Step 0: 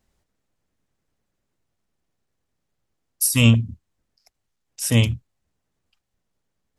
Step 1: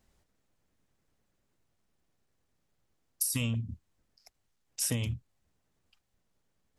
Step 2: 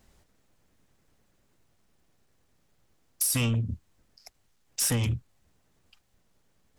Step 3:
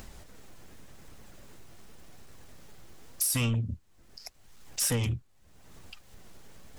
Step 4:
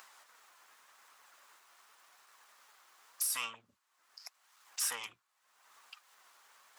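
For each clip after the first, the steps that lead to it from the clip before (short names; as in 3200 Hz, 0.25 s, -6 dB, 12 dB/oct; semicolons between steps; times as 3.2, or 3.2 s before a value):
limiter -10.5 dBFS, peak gain reduction 8.5 dB; compressor 10:1, threshold -28 dBFS, peak gain reduction 13 dB
dynamic EQ 1300 Hz, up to +6 dB, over -58 dBFS, Q 1.3; soft clip -29.5 dBFS, distortion -12 dB; gain +8.5 dB
upward compressor, threshold -33 dBFS; flange 0.87 Hz, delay 0.7 ms, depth 2.3 ms, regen +79%; gain +3 dB
resonant high-pass 1100 Hz, resonance Q 2.3; gain -5.5 dB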